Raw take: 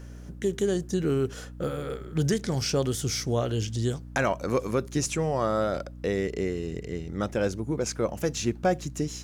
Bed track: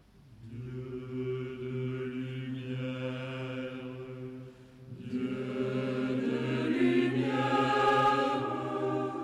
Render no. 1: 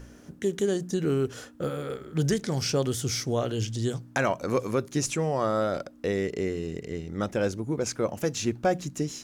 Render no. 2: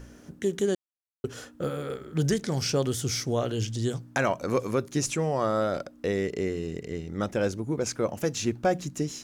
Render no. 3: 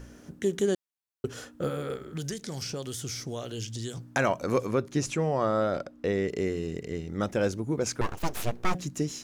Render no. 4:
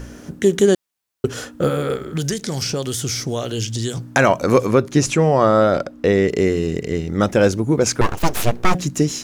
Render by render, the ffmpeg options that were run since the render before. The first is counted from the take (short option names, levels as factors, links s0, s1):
-af "bandreject=f=60:t=h:w=4,bandreject=f=120:t=h:w=4,bandreject=f=180:t=h:w=4"
-filter_complex "[0:a]asplit=3[s0][s1][s2];[s0]atrim=end=0.75,asetpts=PTS-STARTPTS,afade=t=out:st=0.746:d=0.004:c=hsin[s3];[s1]atrim=start=0.75:end=1.24,asetpts=PTS-STARTPTS,volume=0[s4];[s2]atrim=start=1.24,asetpts=PTS-STARTPTS,afade=t=in:d=0.004:c=hsin[s5];[s3][s4][s5]concat=n=3:v=0:a=1"
-filter_complex "[0:a]asettb=1/sr,asplit=3[s0][s1][s2];[s0]atrim=end=1.994[s3];[s1]atrim=start=1.99:end=3.97,asetpts=PTS-STARTPTS,afade=t=in:d=0.004:c=qsin,afade=t=out:st=1.976:d=0.004:c=qsin,acrossover=split=1200|2800[s4][s5][s6];[s4]acompressor=threshold=0.0178:ratio=4[s7];[s5]acompressor=threshold=0.00251:ratio=4[s8];[s6]acompressor=threshold=0.0158:ratio=4[s9];[s7][s8][s9]amix=inputs=3:normalize=0[s10];[s2]atrim=start=3.966[s11];[s3][s10]acrossfade=d=0.004:c1=hsin:c2=qsin[s12];[s12][s11]acrossfade=d=0.004:c1=qsin:c2=hsin,asettb=1/sr,asplit=3[s13][s14][s15];[s13]atrim=end=4.664[s16];[s14]atrim=start=4.66:end=6.28,asetpts=PTS-STARTPTS,afade=t=in:d=0.004:c=qsin,afade=t=out:st=1.616:d=0.004:c=qsin,highshelf=f=6100:g=-10[s17];[s15]atrim=start=6.276[s18];[s16][s17]acrossfade=d=0.004:c1=hsin:c2=qsin[s19];[s19][s18]acrossfade=d=0.004:c1=qsin:c2=hsin,asettb=1/sr,asplit=3[s20][s21][s22];[s20]atrim=end=8.014[s23];[s21]atrim=start=8.01:end=8.75,asetpts=PTS-STARTPTS,afade=t=in:d=0.004:c=qsin,afade=t=out:st=0.736:d=0.004:c=qsin,aeval=exprs='abs(val(0))':c=same[s24];[s22]atrim=start=8.746[s25];[s23][s24]acrossfade=d=0.004:c1=hsin:c2=qsin[s26];[s26][s25]acrossfade=d=0.004:c1=qsin:c2=hsin"
-af "volume=3.98,alimiter=limit=0.708:level=0:latency=1"